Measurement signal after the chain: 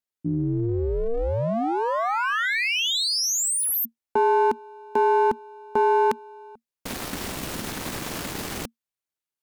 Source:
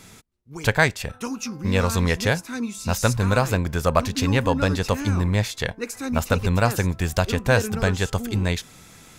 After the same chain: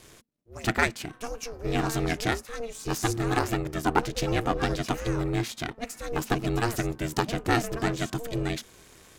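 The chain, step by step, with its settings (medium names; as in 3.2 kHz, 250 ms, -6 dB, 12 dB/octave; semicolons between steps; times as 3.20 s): partial rectifier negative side -7 dB; Chebyshev shaper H 7 -36 dB, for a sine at -4.5 dBFS; ring modulator 230 Hz; trim +1 dB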